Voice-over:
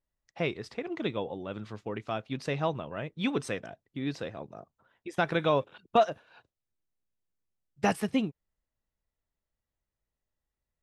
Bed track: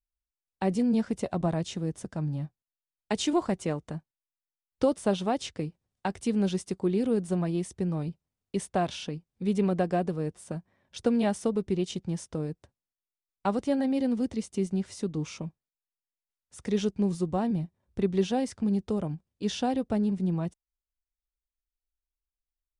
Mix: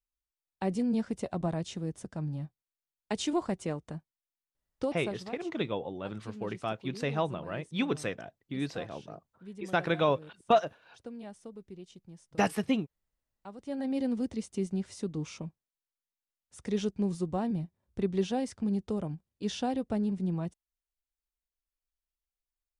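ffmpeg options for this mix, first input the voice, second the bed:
ffmpeg -i stem1.wav -i stem2.wav -filter_complex "[0:a]adelay=4550,volume=-0.5dB[link_01];[1:a]volume=11dB,afade=type=out:start_time=4.47:duration=0.92:silence=0.188365,afade=type=in:start_time=13.57:duration=0.4:silence=0.177828[link_02];[link_01][link_02]amix=inputs=2:normalize=0" out.wav

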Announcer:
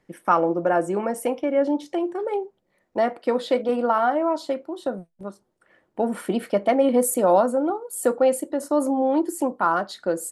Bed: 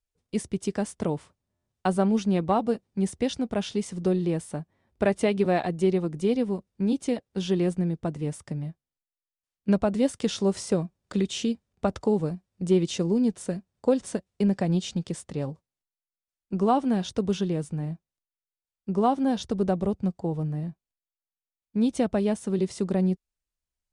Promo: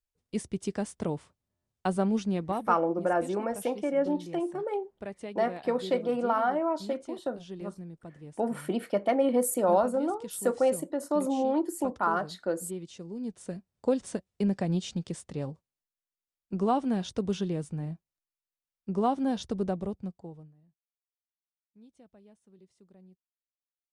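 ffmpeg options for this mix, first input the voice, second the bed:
ffmpeg -i stem1.wav -i stem2.wav -filter_complex "[0:a]adelay=2400,volume=-6dB[link_01];[1:a]volume=8.5dB,afade=type=out:start_time=2.16:duration=0.76:silence=0.237137,afade=type=in:start_time=13.11:duration=0.7:silence=0.237137,afade=type=out:start_time=19.5:duration=1.04:silence=0.0398107[link_02];[link_01][link_02]amix=inputs=2:normalize=0" out.wav

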